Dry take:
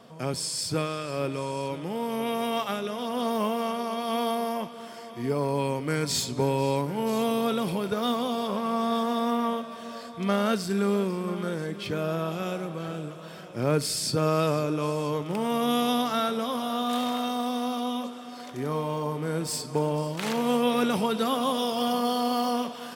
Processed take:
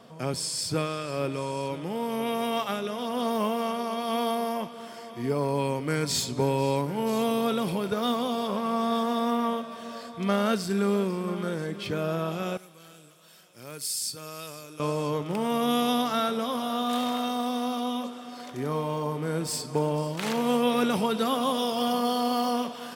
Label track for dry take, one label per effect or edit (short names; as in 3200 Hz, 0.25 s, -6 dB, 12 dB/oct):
12.570000	14.800000	pre-emphasis coefficient 0.9